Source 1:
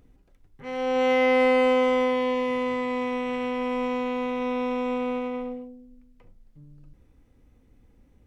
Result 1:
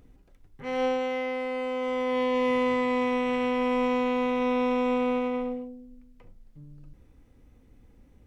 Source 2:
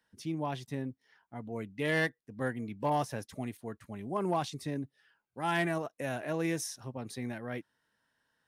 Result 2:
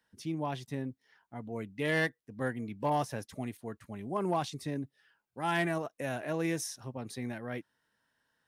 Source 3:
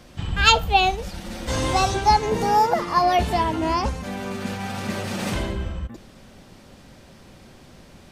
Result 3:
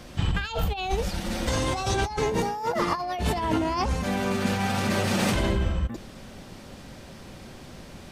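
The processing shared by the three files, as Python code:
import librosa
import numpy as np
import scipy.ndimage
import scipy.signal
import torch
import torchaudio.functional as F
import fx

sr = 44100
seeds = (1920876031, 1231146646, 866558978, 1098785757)

y = fx.over_compress(x, sr, threshold_db=-26.0, ratio=-1.0)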